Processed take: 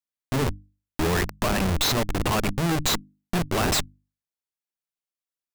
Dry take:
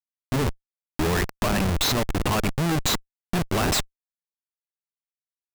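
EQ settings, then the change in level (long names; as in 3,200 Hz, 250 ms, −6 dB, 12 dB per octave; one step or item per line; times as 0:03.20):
mains-hum notches 50/100/150/200/250/300 Hz
0.0 dB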